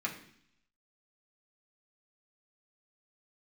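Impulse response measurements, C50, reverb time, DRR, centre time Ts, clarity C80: 9.5 dB, 0.65 s, -3.0 dB, 18 ms, 12.5 dB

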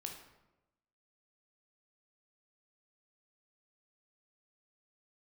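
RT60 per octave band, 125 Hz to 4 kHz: 1.1, 1.1, 1.1, 0.95, 0.80, 0.60 s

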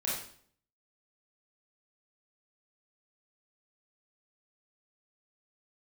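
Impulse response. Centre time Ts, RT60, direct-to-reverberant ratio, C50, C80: 52 ms, 0.55 s, -6.5 dB, 1.0 dB, 6.0 dB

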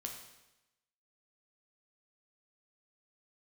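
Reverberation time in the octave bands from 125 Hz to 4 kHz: 1.0, 0.95, 0.95, 0.95, 0.95, 0.95 s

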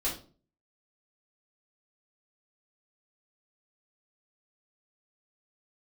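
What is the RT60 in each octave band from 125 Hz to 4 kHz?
0.55, 0.50, 0.45, 0.35, 0.30, 0.30 s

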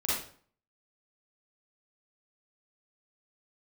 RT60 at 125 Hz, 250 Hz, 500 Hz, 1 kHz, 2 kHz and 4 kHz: 0.55, 0.55, 0.50, 0.50, 0.40, 0.40 s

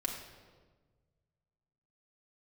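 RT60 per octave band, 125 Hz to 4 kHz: 2.5, 1.8, 1.6, 1.3, 1.1, 1.0 s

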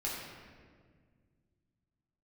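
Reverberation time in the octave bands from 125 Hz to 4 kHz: 3.2, 2.7, 2.0, 1.5, 1.5, 1.1 s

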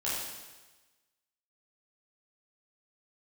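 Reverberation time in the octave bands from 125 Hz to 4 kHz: 1.2, 1.1, 1.2, 1.2, 1.2, 1.2 s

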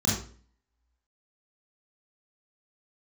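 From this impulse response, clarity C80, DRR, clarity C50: 7.0 dB, -6.0 dB, 2.0 dB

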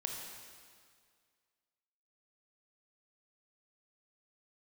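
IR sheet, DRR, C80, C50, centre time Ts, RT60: 1.0 dB, 3.5 dB, 2.0 dB, 78 ms, 2.0 s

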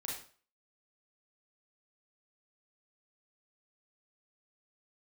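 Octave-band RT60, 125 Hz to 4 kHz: 0.40, 0.40, 0.45, 0.45, 0.40, 0.40 s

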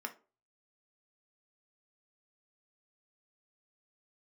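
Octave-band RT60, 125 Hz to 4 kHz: 0.50, 0.35, 0.40, 0.30, 0.25, 0.20 s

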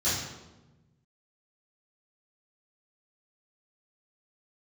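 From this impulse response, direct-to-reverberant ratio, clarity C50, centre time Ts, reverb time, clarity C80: -14.0 dB, 0.5 dB, 69 ms, 1.1 s, 4.0 dB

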